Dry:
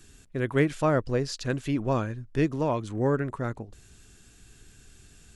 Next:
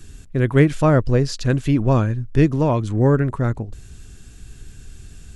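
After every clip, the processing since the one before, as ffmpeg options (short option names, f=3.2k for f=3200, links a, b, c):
-af "lowshelf=f=180:g=11,volume=5.5dB"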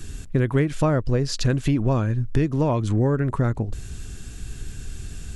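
-af "acompressor=threshold=-23dB:ratio=6,volume=5.5dB"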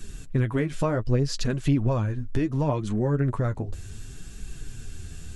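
-af "flanger=delay=4.3:depth=8.1:regen=27:speed=0.68:shape=triangular"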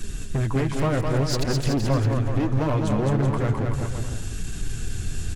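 -filter_complex "[0:a]asplit=2[a][b];[b]alimiter=limit=-22.5dB:level=0:latency=1:release=477,volume=2.5dB[c];[a][c]amix=inputs=2:normalize=0,asoftclip=type=hard:threshold=-21dB,aecho=1:1:210|378|512.4|619.9|705.9:0.631|0.398|0.251|0.158|0.1"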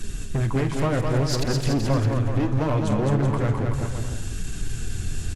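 -filter_complex "[0:a]asplit=2[a][b];[b]adelay=49,volume=-13dB[c];[a][c]amix=inputs=2:normalize=0,aresample=32000,aresample=44100"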